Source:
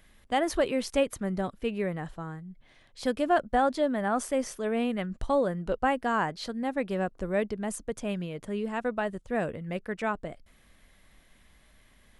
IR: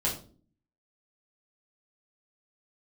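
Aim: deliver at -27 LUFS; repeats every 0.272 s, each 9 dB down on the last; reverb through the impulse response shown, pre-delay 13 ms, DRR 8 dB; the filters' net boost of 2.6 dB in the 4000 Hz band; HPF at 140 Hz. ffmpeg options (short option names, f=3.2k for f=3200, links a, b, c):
-filter_complex "[0:a]highpass=140,equalizer=f=4k:t=o:g=3.5,aecho=1:1:272|544|816|1088:0.355|0.124|0.0435|0.0152,asplit=2[a][b];[1:a]atrim=start_sample=2205,adelay=13[c];[b][c]afir=irnorm=-1:irlink=0,volume=-15dB[d];[a][d]amix=inputs=2:normalize=0,volume=1.5dB"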